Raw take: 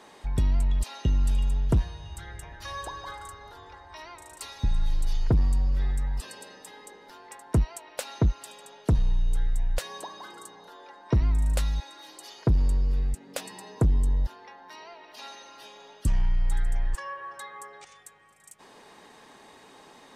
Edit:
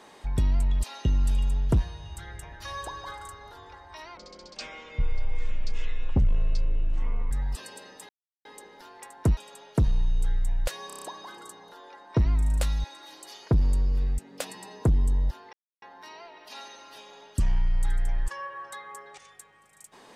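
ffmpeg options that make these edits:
ffmpeg -i in.wav -filter_complex "[0:a]asplit=11[link_01][link_02][link_03][link_04][link_05][link_06][link_07][link_08][link_09][link_10][link_11];[link_01]atrim=end=4.174[link_12];[link_02]atrim=start=4.17:end=5.96,asetpts=PTS-STARTPTS,asetrate=25137,aresample=44100,atrim=end_sample=138489,asetpts=PTS-STARTPTS[link_13];[link_03]atrim=start=5.956:end=6.74,asetpts=PTS-STARTPTS,afade=type=out:start_time=0.78:duration=0.004:curve=hsin,apad=pad_dur=0.36[link_14];[link_04]atrim=start=6.74:end=7.662,asetpts=PTS-STARTPTS,afade=type=in:duration=0.004:curve=hsin[link_15];[link_05]atrim=start=8.478:end=10.012[link_16];[link_06]atrim=start=9.978:end=10.012[link_17];[link_07]atrim=start=9.978:end=10.012[link_18];[link_08]atrim=start=9.978:end=10.012[link_19];[link_09]atrim=start=9.978:end=10.012[link_20];[link_10]atrim=start=9.978:end=14.49,asetpts=PTS-STARTPTS,afade=type=out:start_time=4.508:duration=0.004:curve=hsin,apad=pad_dur=0.29[link_21];[link_11]atrim=start=14.49,asetpts=PTS-STARTPTS,afade=type=in:duration=0.004:curve=hsin[link_22];[link_12][link_13]acrossfade=duration=0.004:curve1=hsin:curve2=hsin[link_23];[link_14][link_15]concat=n=2:v=0:a=1[link_24];[link_23][link_24]acrossfade=duration=0.004:curve1=hsin:curve2=hsin[link_25];[link_25][link_16]acrossfade=duration=0.004:curve1=hsin:curve2=hsin[link_26];[link_26][link_17]acrossfade=duration=0.004:curve1=hsin:curve2=hsin[link_27];[link_27][link_18]acrossfade=duration=0.004:curve1=hsin:curve2=hsin[link_28];[link_28][link_19]acrossfade=duration=0.004:curve1=hsin:curve2=hsin[link_29];[link_29][link_20]acrossfade=duration=0.004:curve1=hsin:curve2=hsin[link_30];[link_21][link_22]concat=n=2:v=0:a=1[link_31];[link_30][link_31]acrossfade=duration=0.004:curve1=hsin:curve2=hsin" out.wav

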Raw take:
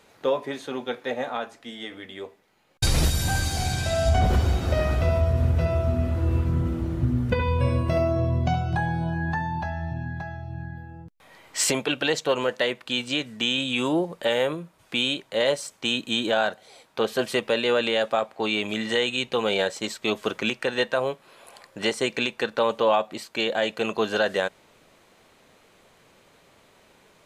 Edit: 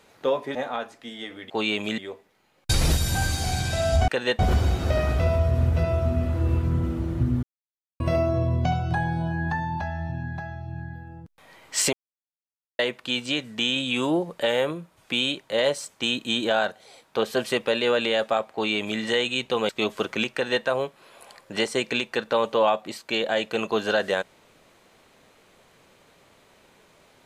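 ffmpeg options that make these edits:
ffmpeg -i in.wav -filter_complex "[0:a]asplit=11[link_01][link_02][link_03][link_04][link_05][link_06][link_07][link_08][link_09][link_10][link_11];[link_01]atrim=end=0.552[link_12];[link_02]atrim=start=1.158:end=2.112[link_13];[link_03]atrim=start=18.348:end=18.832[link_14];[link_04]atrim=start=2.108:end=4.212[link_15];[link_05]atrim=start=20.588:end=20.902[link_16];[link_06]atrim=start=4.208:end=7.25,asetpts=PTS-STARTPTS,afade=type=out:start_time=3.038:duration=0.004:curve=hsin[link_17];[link_07]atrim=start=7.25:end=7.82,asetpts=PTS-STARTPTS,volume=0[link_18];[link_08]atrim=start=7.82:end=11.75,asetpts=PTS-STARTPTS,afade=type=in:duration=0.004:curve=hsin,afade=type=out:start_time=3.926:duration=0.004:curve=hsin[link_19];[link_09]atrim=start=11.75:end=12.61,asetpts=PTS-STARTPTS,volume=0[link_20];[link_10]atrim=start=12.61:end=19.512,asetpts=PTS-STARTPTS,afade=type=in:duration=0.004:curve=hsin[link_21];[link_11]atrim=start=19.948[link_22];[link_12][link_13]acrossfade=duration=0.004:curve1=hsin:curve2=hsin[link_23];[link_23][link_14]acrossfade=duration=0.004:curve1=hsin:curve2=hsin[link_24];[link_24][link_15]acrossfade=duration=0.004:curve1=hsin:curve2=hsin[link_25];[link_25][link_16]acrossfade=duration=0.004:curve1=hsin:curve2=hsin[link_26];[link_17][link_18][link_19][link_20][link_21]concat=n=5:v=0:a=1[link_27];[link_26][link_27]acrossfade=duration=0.004:curve1=hsin:curve2=hsin[link_28];[link_28][link_22]acrossfade=duration=0.004:curve1=hsin:curve2=hsin" out.wav

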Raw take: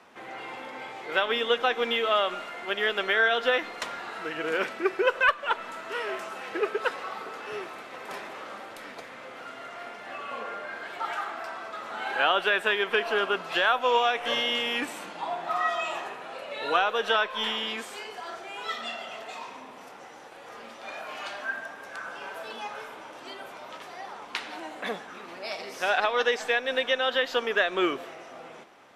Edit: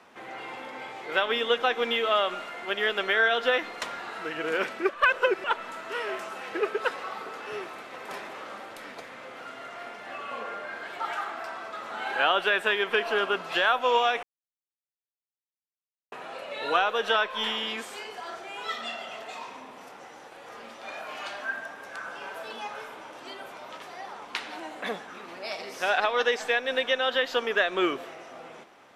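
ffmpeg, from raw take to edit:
ffmpeg -i in.wav -filter_complex "[0:a]asplit=5[link_01][link_02][link_03][link_04][link_05];[link_01]atrim=end=4.892[link_06];[link_02]atrim=start=4.888:end=5.442,asetpts=PTS-STARTPTS,areverse[link_07];[link_03]atrim=start=5.438:end=14.23,asetpts=PTS-STARTPTS,afade=type=out:start_time=8.788:duration=0.004:curve=hsin[link_08];[link_04]atrim=start=14.23:end=16.12,asetpts=PTS-STARTPTS,volume=0[link_09];[link_05]atrim=start=16.12,asetpts=PTS-STARTPTS,afade=type=in:duration=0.004:curve=hsin[link_10];[link_06][link_07]acrossfade=duration=0.004:curve1=hsin:curve2=hsin[link_11];[link_08][link_09][link_10]concat=n=3:v=0:a=1[link_12];[link_11][link_12]acrossfade=duration=0.004:curve1=hsin:curve2=hsin" out.wav

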